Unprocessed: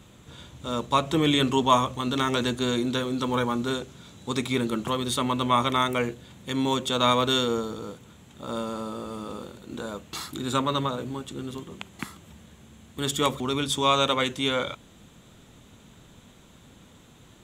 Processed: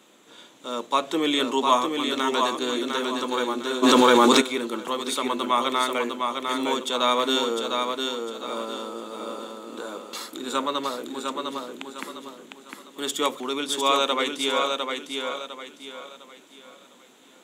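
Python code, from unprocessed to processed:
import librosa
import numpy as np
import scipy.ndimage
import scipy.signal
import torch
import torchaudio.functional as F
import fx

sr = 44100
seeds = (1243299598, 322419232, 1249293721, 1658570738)

p1 = scipy.signal.sosfilt(scipy.signal.butter(4, 270.0, 'highpass', fs=sr, output='sos'), x)
p2 = p1 + fx.echo_feedback(p1, sr, ms=704, feedback_pct=34, wet_db=-4.5, dry=0)
y = fx.env_flatten(p2, sr, amount_pct=100, at=(3.82, 4.4), fade=0.02)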